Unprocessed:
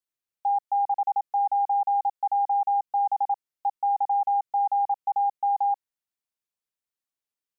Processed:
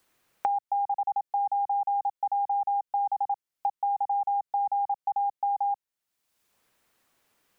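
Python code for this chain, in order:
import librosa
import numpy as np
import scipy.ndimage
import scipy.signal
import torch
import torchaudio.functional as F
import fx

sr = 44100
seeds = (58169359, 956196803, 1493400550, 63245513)

y = fx.band_squash(x, sr, depth_pct=100)
y = y * librosa.db_to_amplitude(-3.5)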